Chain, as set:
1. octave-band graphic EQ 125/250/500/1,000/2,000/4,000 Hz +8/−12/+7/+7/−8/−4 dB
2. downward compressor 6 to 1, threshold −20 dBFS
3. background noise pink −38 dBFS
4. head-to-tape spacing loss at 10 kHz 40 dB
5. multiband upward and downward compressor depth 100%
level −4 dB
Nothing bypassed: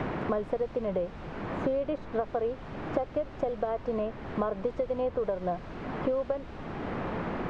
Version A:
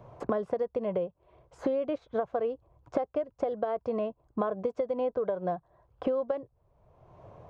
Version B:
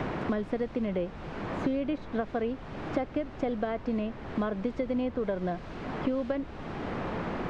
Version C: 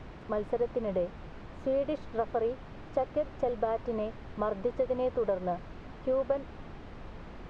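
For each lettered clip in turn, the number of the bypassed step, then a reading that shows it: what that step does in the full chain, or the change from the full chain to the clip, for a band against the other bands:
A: 3, 125 Hz band −6.0 dB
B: 1, 250 Hz band +5.0 dB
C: 5, change in crest factor −2.5 dB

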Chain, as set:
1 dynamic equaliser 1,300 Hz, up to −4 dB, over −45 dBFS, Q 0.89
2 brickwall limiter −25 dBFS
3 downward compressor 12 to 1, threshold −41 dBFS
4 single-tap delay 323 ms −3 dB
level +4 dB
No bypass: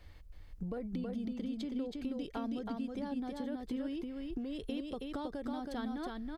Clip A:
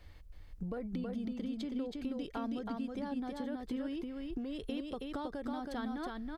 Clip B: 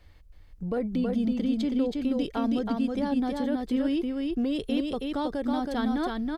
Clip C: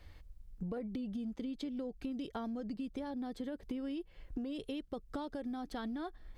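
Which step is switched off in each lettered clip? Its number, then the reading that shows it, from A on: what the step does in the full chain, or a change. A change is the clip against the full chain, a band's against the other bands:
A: 1, 2 kHz band +2.0 dB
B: 3, average gain reduction 9.0 dB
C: 4, change in integrated loudness −2.0 LU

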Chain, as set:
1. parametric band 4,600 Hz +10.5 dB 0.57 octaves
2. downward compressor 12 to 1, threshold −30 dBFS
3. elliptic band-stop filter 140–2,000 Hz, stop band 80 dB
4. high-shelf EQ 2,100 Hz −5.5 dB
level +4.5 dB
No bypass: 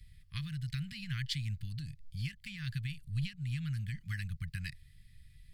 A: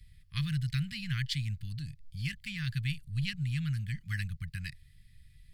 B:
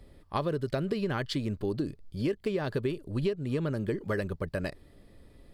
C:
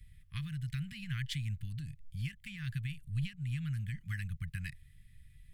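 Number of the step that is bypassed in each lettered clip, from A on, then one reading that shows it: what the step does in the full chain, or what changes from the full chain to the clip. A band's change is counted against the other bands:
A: 2, average gain reduction 3.5 dB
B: 3, 250 Hz band +11.0 dB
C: 1, 4 kHz band −3.5 dB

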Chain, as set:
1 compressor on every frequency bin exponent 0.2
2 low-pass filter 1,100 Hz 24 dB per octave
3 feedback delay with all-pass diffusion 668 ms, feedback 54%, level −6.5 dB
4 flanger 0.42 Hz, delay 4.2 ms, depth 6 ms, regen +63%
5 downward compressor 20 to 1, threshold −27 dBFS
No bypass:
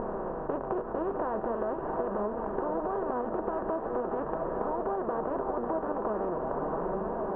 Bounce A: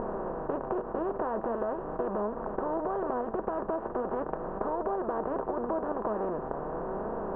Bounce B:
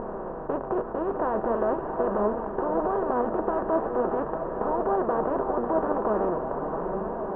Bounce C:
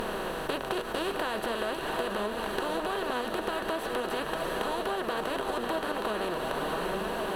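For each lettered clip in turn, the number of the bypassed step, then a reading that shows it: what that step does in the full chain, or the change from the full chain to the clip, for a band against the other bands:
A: 3, change in momentary loudness spread +2 LU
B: 5, average gain reduction 4.0 dB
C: 2, 2 kHz band +13.0 dB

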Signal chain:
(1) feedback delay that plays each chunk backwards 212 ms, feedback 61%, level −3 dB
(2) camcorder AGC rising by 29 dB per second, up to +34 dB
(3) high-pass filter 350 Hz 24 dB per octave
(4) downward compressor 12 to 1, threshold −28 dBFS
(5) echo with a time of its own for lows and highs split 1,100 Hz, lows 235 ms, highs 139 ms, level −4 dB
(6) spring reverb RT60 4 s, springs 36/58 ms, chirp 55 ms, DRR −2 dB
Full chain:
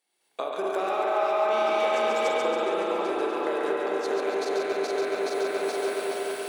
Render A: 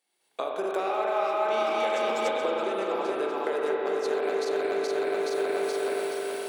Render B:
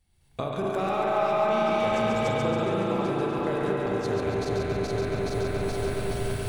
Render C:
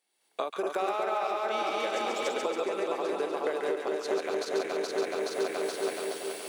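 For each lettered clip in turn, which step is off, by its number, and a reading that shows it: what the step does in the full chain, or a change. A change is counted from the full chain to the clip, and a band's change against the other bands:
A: 5, echo-to-direct ratio 5.0 dB to 2.0 dB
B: 3, 250 Hz band +7.0 dB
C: 6, echo-to-direct ratio 5.0 dB to −2.5 dB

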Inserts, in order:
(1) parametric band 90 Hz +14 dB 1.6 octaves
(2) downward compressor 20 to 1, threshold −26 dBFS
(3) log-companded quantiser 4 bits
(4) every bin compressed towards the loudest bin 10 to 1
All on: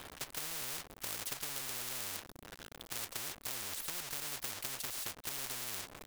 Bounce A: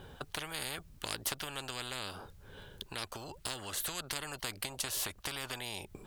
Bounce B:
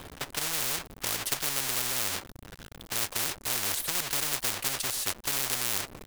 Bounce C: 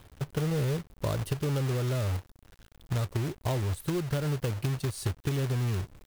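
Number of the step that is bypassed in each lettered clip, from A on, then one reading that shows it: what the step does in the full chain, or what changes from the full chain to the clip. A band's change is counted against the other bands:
3, distortion level −14 dB
2, average gain reduction 5.5 dB
4, 125 Hz band +24.0 dB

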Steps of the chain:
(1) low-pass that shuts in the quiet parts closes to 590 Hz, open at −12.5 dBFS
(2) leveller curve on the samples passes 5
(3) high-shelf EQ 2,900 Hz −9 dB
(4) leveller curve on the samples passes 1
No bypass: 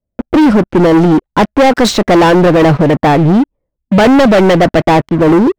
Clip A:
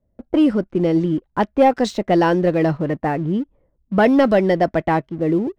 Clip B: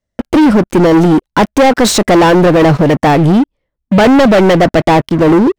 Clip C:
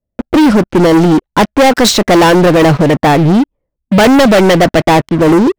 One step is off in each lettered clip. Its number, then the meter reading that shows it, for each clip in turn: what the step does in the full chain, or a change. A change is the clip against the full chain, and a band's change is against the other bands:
2, change in crest factor +9.0 dB
1, 8 kHz band +5.5 dB
3, 8 kHz band +6.0 dB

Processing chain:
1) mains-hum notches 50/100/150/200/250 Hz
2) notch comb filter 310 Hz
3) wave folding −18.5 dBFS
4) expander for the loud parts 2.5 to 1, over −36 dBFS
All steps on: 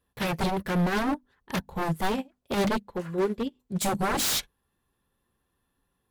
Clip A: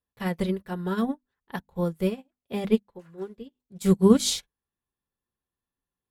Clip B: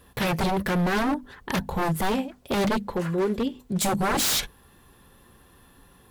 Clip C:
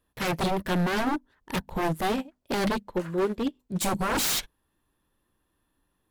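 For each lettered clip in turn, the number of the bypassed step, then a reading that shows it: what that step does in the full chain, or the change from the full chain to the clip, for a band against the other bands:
3, change in crest factor +13.0 dB
4, change in momentary loudness spread −1 LU
2, change in momentary loudness spread −1 LU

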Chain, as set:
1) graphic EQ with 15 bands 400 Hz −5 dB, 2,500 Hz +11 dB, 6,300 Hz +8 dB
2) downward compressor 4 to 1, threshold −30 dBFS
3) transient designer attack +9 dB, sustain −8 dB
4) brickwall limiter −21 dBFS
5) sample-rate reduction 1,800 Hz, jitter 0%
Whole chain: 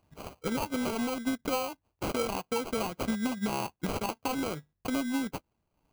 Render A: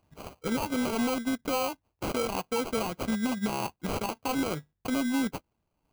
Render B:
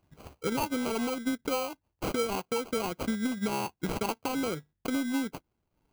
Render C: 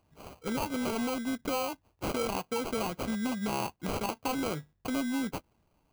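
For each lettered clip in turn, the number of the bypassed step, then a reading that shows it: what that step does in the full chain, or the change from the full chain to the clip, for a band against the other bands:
2, average gain reduction 6.0 dB
1, change in momentary loudness spread −1 LU
3, change in momentary loudness spread −1 LU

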